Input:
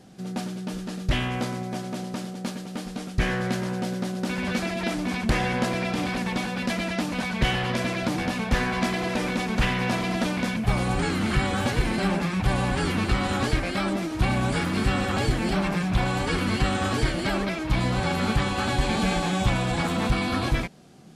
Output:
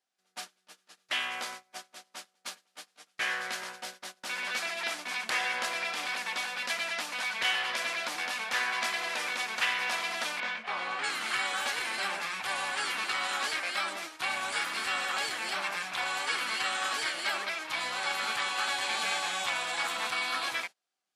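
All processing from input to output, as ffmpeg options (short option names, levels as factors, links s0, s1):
-filter_complex "[0:a]asettb=1/sr,asplit=3[s0][s1][s2];[s0]atrim=end=10.404[s3];[s1]atrim=start=10.4:end=11.04,asetpts=PTS-STARTPTS,afade=t=in:d=0.004:c=qsin,afade=t=out:st=0.636:d=0.004:c=qsin,highpass=170,lowpass=3200,asplit=2[s4][s5];[s5]adelay=22,volume=0.531[s6];[s4][s6]amix=inputs=2:normalize=0,atrim=end_sample=28224[s7];[s2]atrim=start=11.036[s8];[s3][s7]acrossfade=d=0.004:c1=hsin:c2=qsin[s9];[s9][s8]acrossfade=d=0.004:c1=qsin:c2=hsin,highpass=1100,agate=range=0.0501:threshold=0.01:ratio=16:detection=peak"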